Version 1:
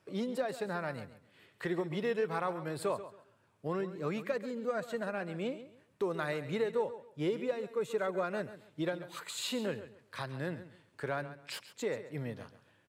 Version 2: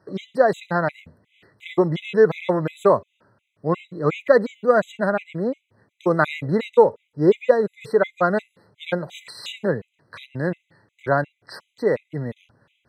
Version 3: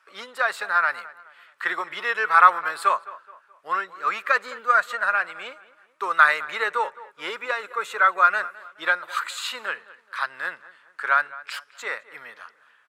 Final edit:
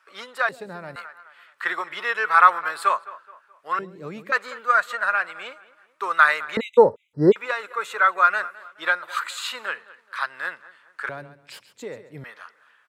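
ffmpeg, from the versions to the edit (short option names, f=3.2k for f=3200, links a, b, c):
-filter_complex "[0:a]asplit=3[a][b][c];[2:a]asplit=5[d][e][f][g][h];[d]atrim=end=0.492[i];[a]atrim=start=0.488:end=0.962[j];[e]atrim=start=0.958:end=3.792[k];[b]atrim=start=3.788:end=4.322[l];[f]atrim=start=4.318:end=6.572[m];[1:a]atrim=start=6.568:end=7.362[n];[g]atrim=start=7.358:end=11.092[o];[c]atrim=start=11.088:end=12.242[p];[h]atrim=start=12.238[q];[i][j]acrossfade=d=0.004:c1=hsin:c2=hsin[r];[r][k]acrossfade=d=0.004:c1=hsin:c2=hsin[s];[s][l]acrossfade=d=0.004:c1=hsin:c2=hsin[t];[t][m]acrossfade=d=0.004:c1=hsin:c2=hsin[u];[u][n]acrossfade=d=0.004:c1=hsin:c2=hsin[v];[v][o]acrossfade=d=0.004:c1=hsin:c2=hsin[w];[w][p]acrossfade=d=0.004:c1=hsin:c2=hsin[x];[x][q]acrossfade=d=0.004:c1=hsin:c2=hsin"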